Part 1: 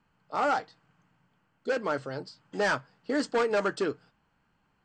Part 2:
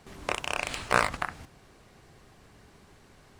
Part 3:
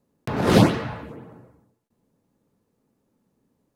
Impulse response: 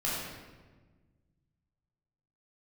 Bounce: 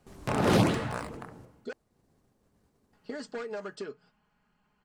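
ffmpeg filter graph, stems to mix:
-filter_complex "[0:a]aecho=1:1:4.8:0.57,acompressor=threshold=-34dB:ratio=4,volume=-2.5dB,asplit=3[a][b][c];[a]atrim=end=1.73,asetpts=PTS-STARTPTS,afade=t=out:st=1.726:d=0.004:c=hsin[d];[b]atrim=start=1.73:end=2.93,asetpts=PTS-STARTPTS,volume=0[e];[c]atrim=start=2.93,asetpts=PTS-STARTPTS,afade=t=in:d=0.004:c=hsin[f];[d][e][f]concat=n=3:v=0:a=1[g];[1:a]agate=range=-7dB:threshold=-54dB:ratio=16:detection=peak,equalizer=f=2.5k:w=0.63:g=-8.5,volume=-2.5dB,afade=t=out:st=0.66:d=0.28:silence=0.375837[h];[2:a]alimiter=limit=-10dB:level=0:latency=1:release=69,volume=-3.5dB[i];[g][h][i]amix=inputs=3:normalize=0"

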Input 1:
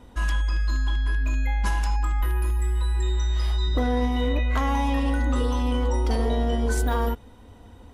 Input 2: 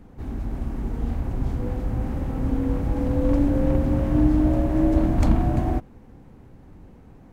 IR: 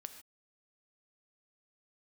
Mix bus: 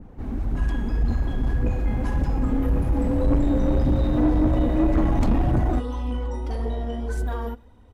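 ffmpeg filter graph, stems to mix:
-filter_complex "[0:a]adelay=400,volume=-8dB,asplit=2[a][b];[b]volume=-6dB[c];[1:a]adynamicequalizer=threshold=0.00355:dfrequency=2500:dqfactor=0.7:tfrequency=2500:tqfactor=0.7:attack=5:release=100:ratio=0.375:range=1.5:mode=boostabove:tftype=highshelf,volume=1.5dB[d];[2:a]atrim=start_sample=2205[e];[c][e]afir=irnorm=-1:irlink=0[f];[a][d][f]amix=inputs=3:normalize=0,aphaser=in_gain=1:out_gain=1:delay=5:decay=0.37:speed=1.8:type=triangular,highshelf=f=2.9k:g=-7.5,asoftclip=type=tanh:threshold=-14dB"

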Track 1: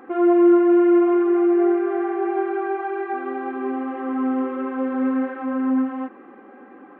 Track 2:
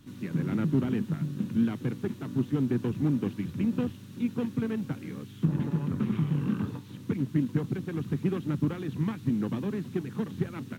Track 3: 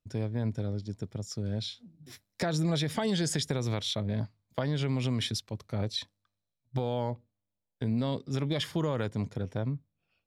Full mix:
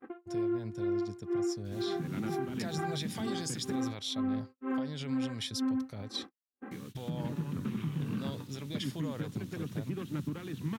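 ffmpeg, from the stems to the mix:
-filter_complex "[0:a]bass=f=250:g=14,treble=f=4k:g=2,aeval=exprs='val(0)*pow(10,-34*(0.5-0.5*cos(2*PI*2.1*n/s))/20)':c=same,volume=-2.5dB[a];[1:a]adelay=1650,volume=-6dB,asplit=3[b][c][d];[b]atrim=end=3.88,asetpts=PTS-STARTPTS,afade=t=out:st=3.876:d=0.004:c=hsin[e];[c]atrim=start=3.88:end=6.71,asetpts=PTS-STARTPTS,volume=0[f];[d]atrim=start=6.71,asetpts=PTS-STARTPTS,afade=t=in:d=0.004:c=hsin[g];[e][f][g]concat=n=3:v=0:a=1[h];[2:a]alimiter=level_in=0.5dB:limit=-24dB:level=0:latency=1:release=199,volume=-0.5dB,adelay=200,volume=-7dB[i];[a][h]amix=inputs=2:normalize=0,alimiter=level_in=0.5dB:limit=-24dB:level=0:latency=1:release=188,volume=-0.5dB,volume=0dB[j];[i][j]amix=inputs=2:normalize=0,agate=range=-44dB:threshold=-45dB:ratio=16:detection=peak,highshelf=f=2.3k:g=8.5,alimiter=level_in=1.5dB:limit=-24dB:level=0:latency=1:release=110,volume=-1.5dB"

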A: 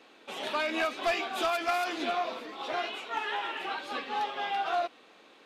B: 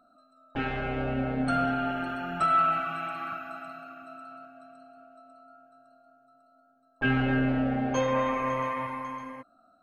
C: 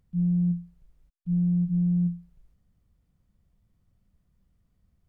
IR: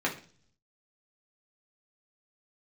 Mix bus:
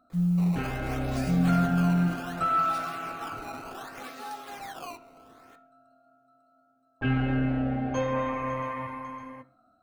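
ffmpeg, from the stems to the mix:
-filter_complex "[0:a]aexciter=amount=6.4:drive=7.1:freq=4.7k,acrusher=samples=15:mix=1:aa=0.000001:lfo=1:lforange=24:lforate=0.66,acompressor=threshold=-38dB:ratio=2.5,adelay=100,volume=-7dB,asplit=2[a][b];[b]volume=-10.5dB[c];[1:a]equalizer=f=70:w=0.47:g=11.5,volume=-5.5dB,asplit=2[d][e];[e]volume=-17.5dB[f];[2:a]acrusher=bits=8:mix=0:aa=0.000001,volume=-0.5dB[g];[3:a]atrim=start_sample=2205[h];[c][f]amix=inputs=2:normalize=0[i];[i][h]afir=irnorm=-1:irlink=0[j];[a][d][g][j]amix=inputs=4:normalize=0"

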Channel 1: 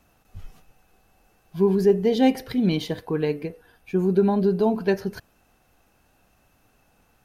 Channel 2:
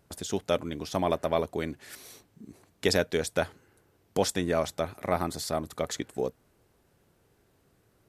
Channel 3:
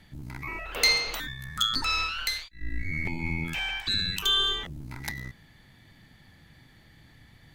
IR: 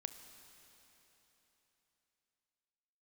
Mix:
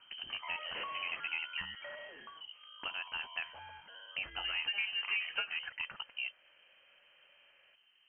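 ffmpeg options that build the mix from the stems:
-filter_complex "[0:a]highpass=470,adelay=500,volume=-1dB,asplit=3[a][b][c];[a]atrim=end=1.66,asetpts=PTS-STARTPTS,afade=t=out:st=1.656:d=0.004:c=hsin[d];[b]atrim=start=1.66:end=4.25,asetpts=PTS-STARTPTS,volume=0[e];[c]atrim=start=4.25,asetpts=PTS-STARTPTS,afade=t=in:d=0.004:c=hsin[f];[d][e][f]concat=n=3:v=0:a=1[g];[1:a]alimiter=limit=-17.5dB:level=0:latency=1:release=119,volume=-3dB[h];[2:a]volume=-6dB,afade=t=out:st=1.54:d=0.39:silence=0.266073[i];[h][i]amix=inputs=2:normalize=0,alimiter=limit=-21dB:level=0:latency=1:release=362,volume=0dB[j];[g][j]amix=inputs=2:normalize=0,acrossover=split=90|630[k][l][m];[k]acompressor=threshold=-58dB:ratio=4[n];[l]acompressor=threshold=-42dB:ratio=4[o];[m]acompressor=threshold=-35dB:ratio=4[p];[n][o][p]amix=inputs=3:normalize=0,lowpass=f=2.7k:t=q:w=0.5098,lowpass=f=2.7k:t=q:w=0.6013,lowpass=f=2.7k:t=q:w=0.9,lowpass=f=2.7k:t=q:w=2.563,afreqshift=-3200"

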